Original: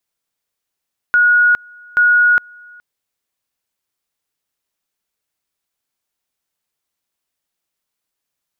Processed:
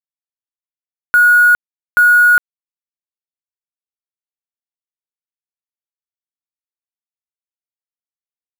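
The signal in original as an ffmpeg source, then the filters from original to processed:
-f lavfi -i "aevalsrc='pow(10,(-8-29*gte(mod(t,0.83),0.41))/20)*sin(2*PI*1450*t)':d=1.66:s=44100"
-filter_complex "[0:a]asplit=2[a][b];[b]alimiter=limit=-18dB:level=0:latency=1,volume=0dB[c];[a][c]amix=inputs=2:normalize=0,acrusher=bits=3:mix=0:aa=0.5"

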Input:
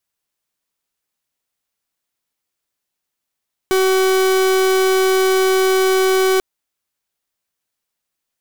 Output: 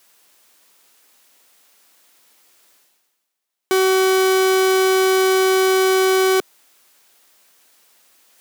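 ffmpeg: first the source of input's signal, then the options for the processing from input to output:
-f lavfi -i "aevalsrc='0.188*(2*lt(mod(378*t,1),0.42)-1)':d=2.69:s=44100"
-af "highpass=270,areverse,acompressor=mode=upward:threshold=-35dB:ratio=2.5,areverse"

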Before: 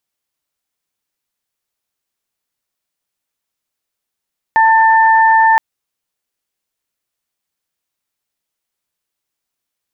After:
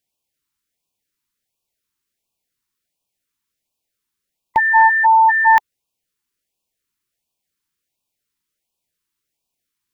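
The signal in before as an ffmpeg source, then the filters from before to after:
-f lavfi -i "aevalsrc='0.422*sin(2*PI*892*t)+0.224*sin(2*PI*1784*t)':d=1.02:s=44100"
-af "lowshelf=f=230:g=3,afftfilt=real='re*(1-between(b*sr/1024,570*pow(1700/570,0.5+0.5*sin(2*PI*1.4*pts/sr))/1.41,570*pow(1700/570,0.5+0.5*sin(2*PI*1.4*pts/sr))*1.41))':imag='im*(1-between(b*sr/1024,570*pow(1700/570,0.5+0.5*sin(2*PI*1.4*pts/sr))/1.41,570*pow(1700/570,0.5+0.5*sin(2*PI*1.4*pts/sr))*1.41))':win_size=1024:overlap=0.75"

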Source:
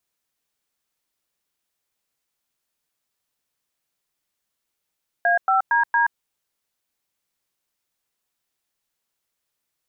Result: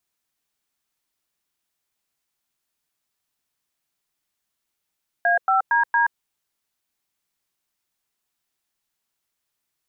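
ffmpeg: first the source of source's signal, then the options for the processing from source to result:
-f lavfi -i "aevalsrc='0.126*clip(min(mod(t,0.23),0.126-mod(t,0.23))/0.002,0,1)*(eq(floor(t/0.23),0)*(sin(2*PI*697*mod(t,0.23))+sin(2*PI*1633*mod(t,0.23)))+eq(floor(t/0.23),1)*(sin(2*PI*770*mod(t,0.23))+sin(2*PI*1336*mod(t,0.23)))+eq(floor(t/0.23),2)*(sin(2*PI*941*mod(t,0.23))+sin(2*PI*1633*mod(t,0.23)))+eq(floor(t/0.23),3)*(sin(2*PI*941*mod(t,0.23))+sin(2*PI*1633*mod(t,0.23))))':d=0.92:s=44100"
-af "equalizer=f=510:t=o:w=0.22:g=-8"

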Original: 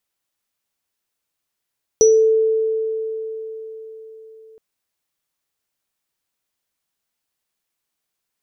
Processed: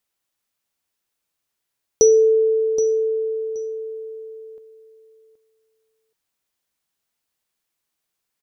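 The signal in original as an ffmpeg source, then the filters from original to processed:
-f lavfi -i "aevalsrc='0.398*pow(10,-3*t/4.42)*sin(2*PI*442*t)+0.237*pow(10,-3*t/0.32)*sin(2*PI*5890*t)':d=2.57:s=44100"
-af "aecho=1:1:774|1548:0.237|0.0403"

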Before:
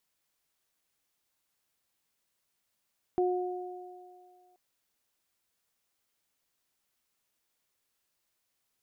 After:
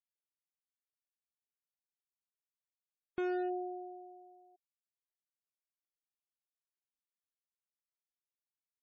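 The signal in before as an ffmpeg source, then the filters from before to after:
-f lavfi -i "aevalsrc='0.0668*pow(10,-3*t/1.85)*sin(2*PI*362*t)+0.0299*pow(10,-3*t/2.5)*sin(2*PI*724*t)':d=1.38:s=44100"
-af "aresample=16000,asoftclip=type=hard:threshold=-31.5dB,aresample=44100,afftfilt=real='re*gte(hypot(re,im),0.00224)':imag='im*gte(hypot(re,im),0.00224)':win_size=1024:overlap=0.75"

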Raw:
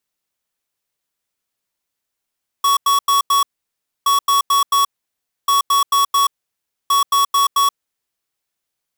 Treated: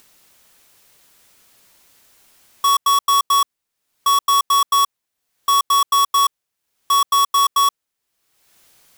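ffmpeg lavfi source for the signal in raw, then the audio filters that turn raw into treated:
-f lavfi -i "aevalsrc='0.2*(2*lt(mod(1120*t,1),0.5)-1)*clip(min(mod(mod(t,1.42),0.22),0.13-mod(mod(t,1.42),0.22))/0.005,0,1)*lt(mod(t,1.42),0.88)':d=5.68:s=44100"
-af "acompressor=mode=upward:threshold=-33dB:ratio=2.5"

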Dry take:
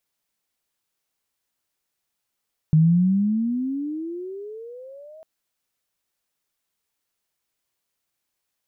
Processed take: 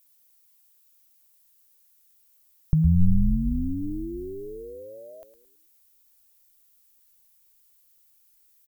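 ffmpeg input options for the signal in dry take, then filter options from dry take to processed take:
-f lavfi -i "aevalsrc='pow(10,(-11.5-30*t/2.5)/20)*sin(2*PI*153*2.5/(25*log(2)/12)*(exp(25*log(2)/12*t/2.5)-1))':d=2.5:s=44100"
-filter_complex "[0:a]aemphasis=mode=production:type=75fm,asplit=2[a][b];[b]asplit=4[c][d][e][f];[c]adelay=109,afreqshift=-77,volume=-11dB[g];[d]adelay=218,afreqshift=-154,volume=-18.5dB[h];[e]adelay=327,afreqshift=-231,volume=-26.1dB[i];[f]adelay=436,afreqshift=-308,volume=-33.6dB[j];[g][h][i][j]amix=inputs=4:normalize=0[k];[a][k]amix=inputs=2:normalize=0,asubboost=boost=10.5:cutoff=59"

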